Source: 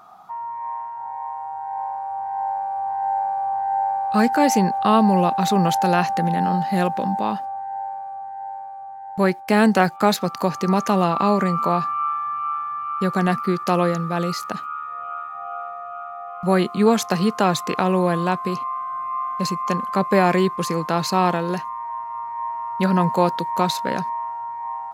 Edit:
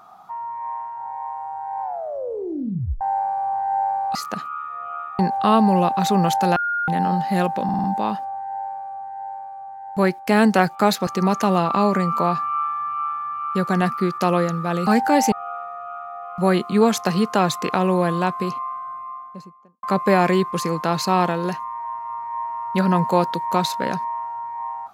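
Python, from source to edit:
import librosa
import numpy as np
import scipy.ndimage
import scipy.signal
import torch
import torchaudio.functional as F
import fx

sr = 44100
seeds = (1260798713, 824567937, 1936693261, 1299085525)

y = fx.studio_fade_out(x, sr, start_s=18.42, length_s=1.46)
y = fx.edit(y, sr, fx.tape_stop(start_s=1.82, length_s=1.19),
    fx.swap(start_s=4.15, length_s=0.45, other_s=14.33, other_length_s=1.04),
    fx.bleep(start_s=5.97, length_s=0.32, hz=1420.0, db=-20.0),
    fx.stutter(start_s=7.05, slice_s=0.05, count=5),
    fx.cut(start_s=10.28, length_s=0.25), tone=tone)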